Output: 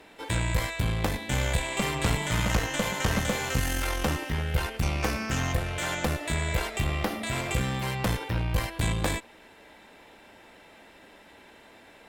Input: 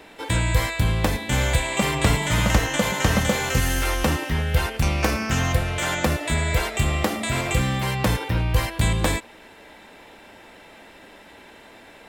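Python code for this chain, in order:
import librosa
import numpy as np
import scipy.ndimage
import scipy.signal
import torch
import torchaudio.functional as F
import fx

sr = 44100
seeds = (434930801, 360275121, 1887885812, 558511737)

y = fx.peak_eq(x, sr, hz=7600.0, db=-8.0, octaves=0.45, at=(6.79, 7.27))
y = fx.tube_stage(y, sr, drive_db=14.0, bias=0.65)
y = y * librosa.db_to_amplitude(-2.5)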